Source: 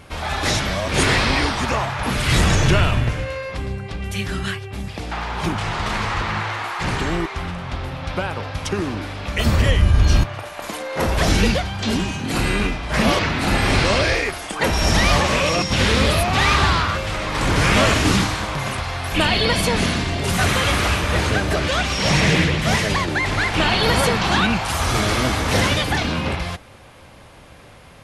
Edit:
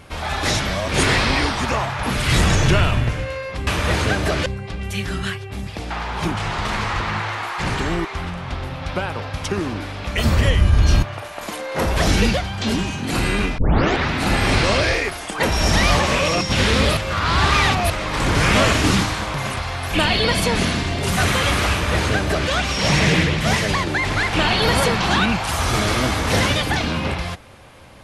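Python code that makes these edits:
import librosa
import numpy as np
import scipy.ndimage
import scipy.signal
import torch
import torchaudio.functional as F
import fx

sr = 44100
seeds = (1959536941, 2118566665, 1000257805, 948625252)

y = fx.edit(x, sr, fx.tape_start(start_s=12.79, length_s=0.52),
    fx.reverse_span(start_s=16.18, length_s=0.93),
    fx.duplicate(start_s=20.92, length_s=0.79, to_s=3.67), tone=tone)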